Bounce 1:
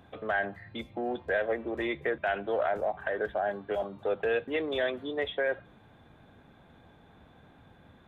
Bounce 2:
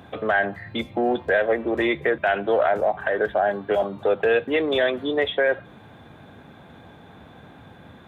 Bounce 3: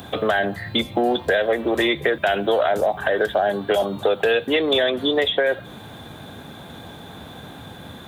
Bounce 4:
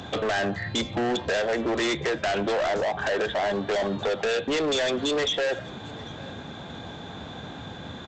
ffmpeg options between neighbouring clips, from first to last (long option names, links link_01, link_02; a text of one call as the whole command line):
ffmpeg -i in.wav -filter_complex "[0:a]asplit=2[link_01][link_02];[link_02]alimiter=level_in=0.5dB:limit=-24dB:level=0:latency=1:release=301,volume=-0.5dB,volume=2dB[link_03];[link_01][link_03]amix=inputs=2:normalize=0,highpass=78,volume=4dB" out.wav
ffmpeg -i in.wav -filter_complex "[0:a]aexciter=amount=2.9:drive=5.7:freq=3300,acrossover=split=600|3000[link_01][link_02][link_03];[link_01]acompressor=threshold=-28dB:ratio=4[link_04];[link_02]acompressor=threshold=-30dB:ratio=4[link_05];[link_03]acompressor=threshold=-35dB:ratio=4[link_06];[link_04][link_05][link_06]amix=inputs=3:normalize=0,volume=7dB" out.wav
ffmpeg -i in.wav -af "aresample=16000,asoftclip=type=hard:threshold=-23dB,aresample=44100,aecho=1:1:797:0.0841" out.wav